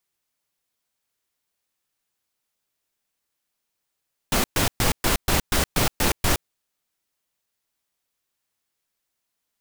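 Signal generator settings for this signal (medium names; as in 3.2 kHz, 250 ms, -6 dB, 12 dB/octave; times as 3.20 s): noise bursts pink, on 0.12 s, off 0.12 s, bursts 9, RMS -20 dBFS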